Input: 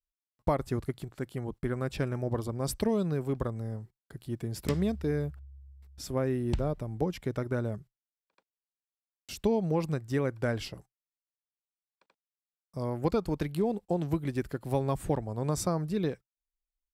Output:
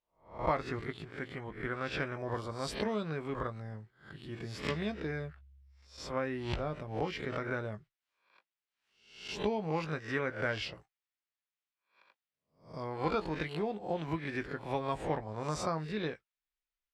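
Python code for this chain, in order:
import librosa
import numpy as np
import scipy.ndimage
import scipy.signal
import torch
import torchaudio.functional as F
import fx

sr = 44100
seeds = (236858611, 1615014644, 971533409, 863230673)

y = fx.spec_swells(x, sr, rise_s=0.4)
y = scipy.signal.sosfilt(scipy.signal.butter(2, 2400.0, 'lowpass', fs=sr, output='sos'), y)
y = fx.tilt_shelf(y, sr, db=-9.5, hz=1100.0)
y = fx.doubler(y, sr, ms=19.0, db=-9.5)
y = fx.pre_swell(y, sr, db_per_s=91.0, at=(6.83, 9.31))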